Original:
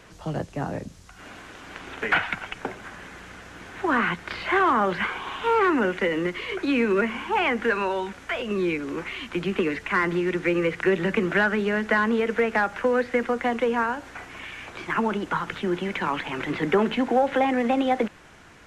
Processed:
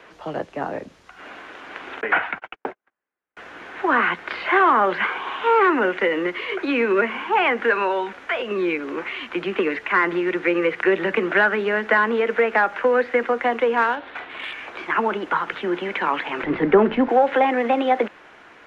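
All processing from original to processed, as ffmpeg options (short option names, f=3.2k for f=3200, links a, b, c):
-filter_complex "[0:a]asettb=1/sr,asplit=3[a][b][c];[a]atrim=end=2.014[d];[b]atrim=start=2.01:end=3.37,asetpts=PTS-STARTPTS,afade=t=in:d=0.004:c=qsin,afade=t=out:st=1.356:d=0.004:c=qsin,agate=range=-48dB:threshold=-35dB:ratio=16:release=100:detection=peak,acrossover=split=3100[e][f];[f]acompressor=threshold=-43dB:ratio=4:attack=1:release=60[g];[e][g]amix=inputs=2:normalize=0,highshelf=f=2.7k:g=-8[h];[c]atrim=start=3.366[i];[d][h]acrossfade=d=0.004:c1=hsin:c2=qsin[j];[j][i]acrossfade=d=0.004:c1=qsin:c2=hsin,asettb=1/sr,asplit=3[k][l][m];[k]atrim=end=13.774[n];[l]atrim=start=13.77:end=14.53,asetpts=PTS-STARTPTS,afade=t=in:d=0.004:c=qsin,afade=t=out:st=0.756:d=0.004:c=qsin,lowpass=f=3.7k:t=q:w=4.6,adynamicsmooth=sensitivity=5:basefreq=2.2k[o];[m]atrim=start=14.526[p];[n][o]acrossfade=d=0.004:c1=hsin:c2=qsin[q];[q][p]acrossfade=d=0.004:c1=qsin:c2=hsin,asettb=1/sr,asplit=3[r][s][t];[r]atrim=end=16.434[u];[s]atrim=start=16.43:end=17.09,asetpts=PTS-STARTPTS,afade=t=in:d=0.004:c=qsin,afade=t=out:st=0.656:d=0.004:c=qsin,aemphasis=mode=reproduction:type=riaa,aeval=exprs='sgn(val(0))*max(abs(val(0))-0.00355,0)':c=same,lowpass=f=6.6k:w=0.5412,lowpass=f=6.6k:w=1.3066[v];[t]atrim=start=17.086[w];[u][v]acrossfade=d=0.004:c1=hsin:c2=qsin[x];[x][w]acrossfade=d=0.004:c1=qsin:c2=hsin,acrossover=split=280 3600:gain=0.126 1 0.178[y][z][aa];[y][z][aa]amix=inputs=3:normalize=0,bandreject=f=7.8k:w=24,volume=5dB"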